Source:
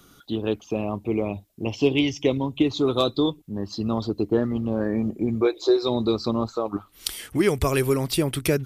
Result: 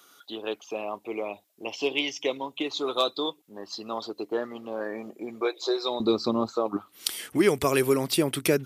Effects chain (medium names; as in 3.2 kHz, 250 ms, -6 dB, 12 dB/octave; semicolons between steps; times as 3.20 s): high-pass 580 Hz 12 dB/octave, from 6.00 s 200 Hz